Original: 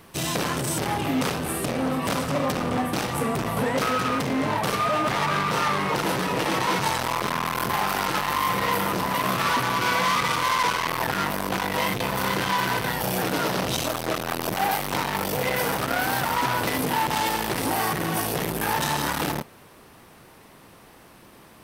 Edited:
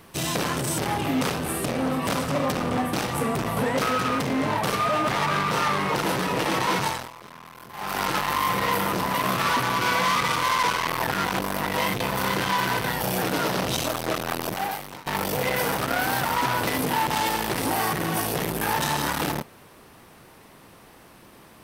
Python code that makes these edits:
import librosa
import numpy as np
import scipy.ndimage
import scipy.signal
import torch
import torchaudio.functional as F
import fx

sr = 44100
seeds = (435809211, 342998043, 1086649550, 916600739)

y = fx.edit(x, sr, fx.fade_down_up(start_s=6.81, length_s=1.22, db=-18.0, fade_s=0.3),
    fx.reverse_span(start_s=11.25, length_s=0.41),
    fx.fade_out_to(start_s=14.33, length_s=0.73, floor_db=-22.5), tone=tone)